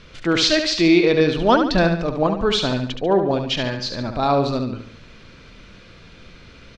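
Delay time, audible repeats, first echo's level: 71 ms, 4, -7.0 dB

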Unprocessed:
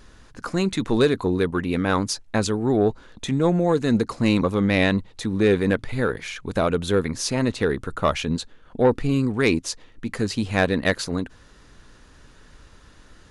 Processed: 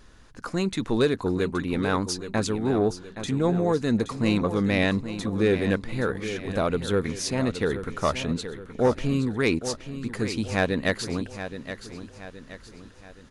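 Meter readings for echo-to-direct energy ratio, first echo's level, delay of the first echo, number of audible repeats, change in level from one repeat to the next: -10.0 dB, -11.0 dB, 0.822 s, 4, -7.0 dB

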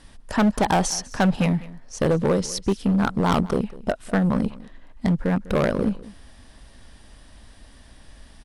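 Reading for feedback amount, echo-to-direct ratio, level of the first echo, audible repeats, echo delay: no steady repeat, -19.5 dB, -19.5 dB, 1, 0.2 s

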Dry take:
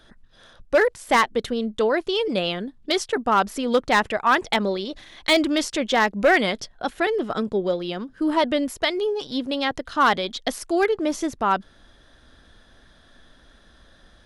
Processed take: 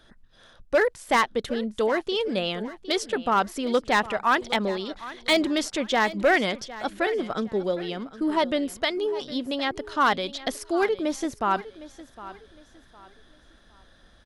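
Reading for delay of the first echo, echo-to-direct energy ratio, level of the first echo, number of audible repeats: 0.759 s, -16.0 dB, -16.5 dB, 2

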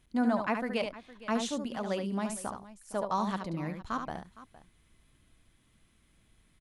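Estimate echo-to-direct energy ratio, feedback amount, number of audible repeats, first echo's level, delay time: -6.0 dB, no steady repeat, 2, -6.5 dB, 72 ms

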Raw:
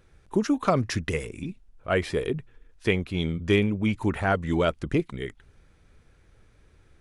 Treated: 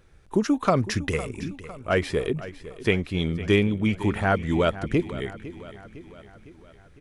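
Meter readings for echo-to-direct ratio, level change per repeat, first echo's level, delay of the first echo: -14.0 dB, -5.0 dB, -15.5 dB, 0.506 s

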